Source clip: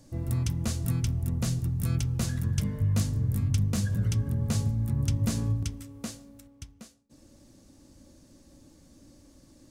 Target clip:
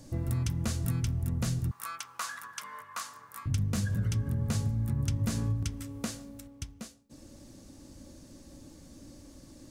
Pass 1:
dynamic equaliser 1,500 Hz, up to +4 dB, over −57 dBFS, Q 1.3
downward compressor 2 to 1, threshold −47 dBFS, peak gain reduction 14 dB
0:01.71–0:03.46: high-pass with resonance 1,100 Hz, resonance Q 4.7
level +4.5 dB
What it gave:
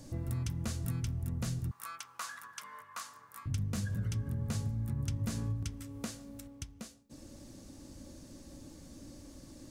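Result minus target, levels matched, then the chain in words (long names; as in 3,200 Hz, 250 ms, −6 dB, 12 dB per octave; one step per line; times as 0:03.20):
downward compressor: peak gain reduction +5 dB
dynamic equaliser 1,500 Hz, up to +4 dB, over −57 dBFS, Q 1.3
downward compressor 2 to 1, threshold −37 dBFS, peak gain reduction 9 dB
0:01.71–0:03.46: high-pass with resonance 1,100 Hz, resonance Q 4.7
level +4.5 dB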